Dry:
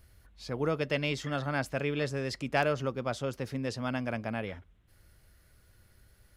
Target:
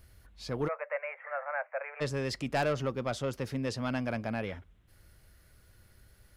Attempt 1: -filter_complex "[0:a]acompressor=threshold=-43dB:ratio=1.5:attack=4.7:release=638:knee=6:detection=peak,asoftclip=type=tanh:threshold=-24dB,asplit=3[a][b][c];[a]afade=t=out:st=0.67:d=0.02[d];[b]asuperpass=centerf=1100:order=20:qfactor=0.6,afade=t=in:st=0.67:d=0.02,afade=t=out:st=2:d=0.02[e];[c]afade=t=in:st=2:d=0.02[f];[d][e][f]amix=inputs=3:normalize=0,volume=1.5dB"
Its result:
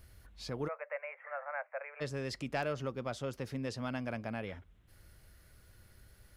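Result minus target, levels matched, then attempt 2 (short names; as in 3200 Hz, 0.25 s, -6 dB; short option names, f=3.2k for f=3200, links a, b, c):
compressor: peak gain reduction +8.5 dB
-filter_complex "[0:a]asoftclip=type=tanh:threshold=-24dB,asplit=3[a][b][c];[a]afade=t=out:st=0.67:d=0.02[d];[b]asuperpass=centerf=1100:order=20:qfactor=0.6,afade=t=in:st=0.67:d=0.02,afade=t=out:st=2:d=0.02[e];[c]afade=t=in:st=2:d=0.02[f];[d][e][f]amix=inputs=3:normalize=0,volume=1.5dB"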